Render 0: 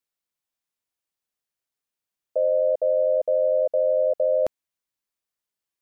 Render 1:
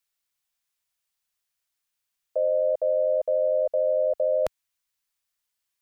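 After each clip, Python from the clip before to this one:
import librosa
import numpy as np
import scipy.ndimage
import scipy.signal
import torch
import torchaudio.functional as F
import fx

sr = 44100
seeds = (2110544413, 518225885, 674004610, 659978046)

y = fx.peak_eq(x, sr, hz=290.0, db=-13.5, octaves=2.6)
y = y * 10.0 ** (6.5 / 20.0)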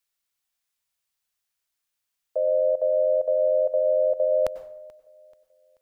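y = fx.echo_feedback(x, sr, ms=434, feedback_pct=41, wet_db=-24)
y = fx.rev_plate(y, sr, seeds[0], rt60_s=0.61, hf_ratio=0.7, predelay_ms=85, drr_db=13.0)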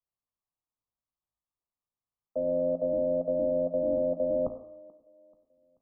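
y = fx.octave_divider(x, sr, octaves=1, level_db=3.0)
y = fx.brickwall_lowpass(y, sr, high_hz=1300.0)
y = fx.comb_fb(y, sr, f0_hz=57.0, decay_s=0.6, harmonics='all', damping=0.0, mix_pct=70)
y = y * 10.0 ** (1.5 / 20.0)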